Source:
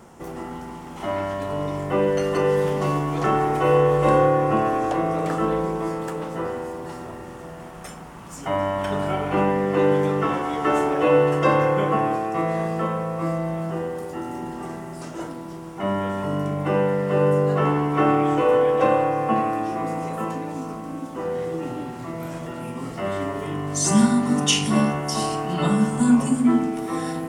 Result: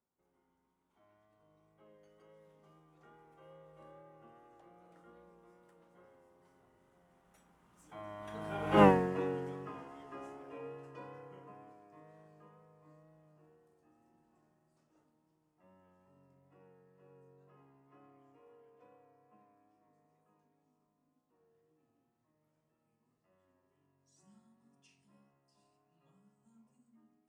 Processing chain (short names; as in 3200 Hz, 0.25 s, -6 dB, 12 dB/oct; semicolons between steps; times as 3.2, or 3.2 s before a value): Doppler pass-by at 8.84, 22 m/s, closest 1.2 m; wow and flutter 23 cents